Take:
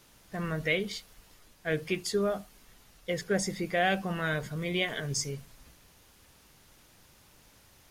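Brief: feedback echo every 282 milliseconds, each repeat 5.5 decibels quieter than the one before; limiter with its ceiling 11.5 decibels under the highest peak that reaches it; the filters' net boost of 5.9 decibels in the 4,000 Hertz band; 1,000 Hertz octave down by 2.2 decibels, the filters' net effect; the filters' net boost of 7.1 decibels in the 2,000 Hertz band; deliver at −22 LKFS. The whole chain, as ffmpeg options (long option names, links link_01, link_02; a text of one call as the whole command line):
ffmpeg -i in.wav -af "equalizer=frequency=1000:width_type=o:gain=-6.5,equalizer=frequency=2000:width_type=o:gain=9,equalizer=frequency=4000:width_type=o:gain=5,alimiter=limit=-20.5dB:level=0:latency=1,aecho=1:1:282|564|846|1128|1410|1692|1974:0.531|0.281|0.149|0.079|0.0419|0.0222|0.0118,volume=9.5dB" out.wav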